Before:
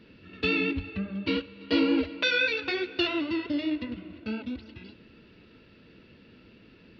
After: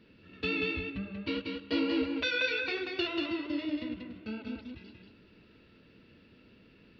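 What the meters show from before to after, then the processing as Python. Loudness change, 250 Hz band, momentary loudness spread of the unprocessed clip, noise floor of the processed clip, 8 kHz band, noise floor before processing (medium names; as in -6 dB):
-4.5 dB, -5.0 dB, 14 LU, -60 dBFS, no reading, -56 dBFS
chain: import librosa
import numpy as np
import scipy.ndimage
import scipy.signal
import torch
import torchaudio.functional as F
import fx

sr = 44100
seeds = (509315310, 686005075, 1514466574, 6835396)

y = x + 10.0 ** (-4.0 / 20.0) * np.pad(x, (int(186 * sr / 1000.0), 0))[:len(x)]
y = y * 10.0 ** (-6.0 / 20.0)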